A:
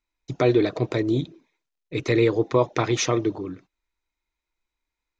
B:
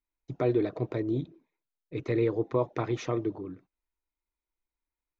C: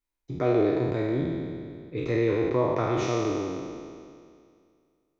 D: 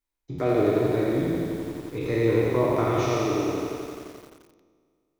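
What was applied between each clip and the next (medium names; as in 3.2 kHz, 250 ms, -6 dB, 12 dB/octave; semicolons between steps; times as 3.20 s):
low-pass 1.2 kHz 6 dB/octave; trim -6.5 dB
spectral sustain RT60 2.19 s
bit-crushed delay 87 ms, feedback 80%, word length 8-bit, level -4.5 dB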